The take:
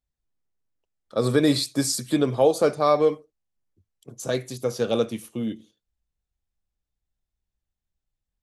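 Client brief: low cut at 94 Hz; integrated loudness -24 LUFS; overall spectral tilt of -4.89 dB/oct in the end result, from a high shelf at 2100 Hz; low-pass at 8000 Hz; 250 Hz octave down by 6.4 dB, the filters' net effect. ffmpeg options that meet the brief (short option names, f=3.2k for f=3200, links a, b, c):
-af "highpass=94,lowpass=8k,equalizer=f=250:t=o:g=-8,highshelf=f=2.1k:g=-3.5,volume=2dB"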